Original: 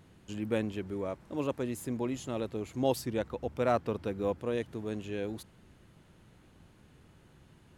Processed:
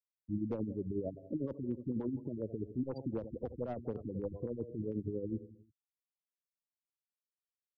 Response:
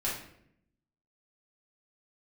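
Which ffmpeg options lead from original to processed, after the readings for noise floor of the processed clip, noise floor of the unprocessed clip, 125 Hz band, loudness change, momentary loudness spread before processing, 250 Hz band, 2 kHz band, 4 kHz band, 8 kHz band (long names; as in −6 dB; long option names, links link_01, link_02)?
below −85 dBFS, −61 dBFS, −2.0 dB, −5.0 dB, 7 LU, −2.5 dB, below −20 dB, below −25 dB, below −30 dB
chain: -filter_complex "[0:a]equalizer=frequency=2100:width=0.81:gain=-12.5,asplit=2[link_01][link_02];[1:a]atrim=start_sample=2205[link_03];[link_02][link_03]afir=irnorm=-1:irlink=0,volume=-27.5dB[link_04];[link_01][link_04]amix=inputs=2:normalize=0,afftfilt=real='re*gte(hypot(re,im),0.0355)':imag='im*gte(hypot(re,im),0.0355)':win_size=1024:overlap=0.75,aecho=1:1:82|164|246|328:0.1|0.051|0.026|0.0133,aeval=exprs='clip(val(0),-1,0.0501)':channel_layout=same,acrossover=split=230|600[link_05][link_06][link_07];[link_05]acompressor=threshold=-52dB:ratio=4[link_08];[link_06]acompressor=threshold=-41dB:ratio=4[link_09];[link_07]acompressor=threshold=-45dB:ratio=4[link_10];[link_08][link_09][link_10]amix=inputs=3:normalize=0,alimiter=level_in=13.5dB:limit=-24dB:level=0:latency=1:release=36,volume=-13.5dB,tremolo=f=11:d=0.55,acontrast=60,lowshelf=frequency=250:gain=8.5,afftfilt=real='re*lt(b*sr/1024,330*pow(6800/330,0.5+0.5*sin(2*PI*4.1*pts/sr)))':imag='im*lt(b*sr/1024,330*pow(6800/330,0.5+0.5*sin(2*PI*4.1*pts/sr)))':win_size=1024:overlap=0.75,volume=1dB"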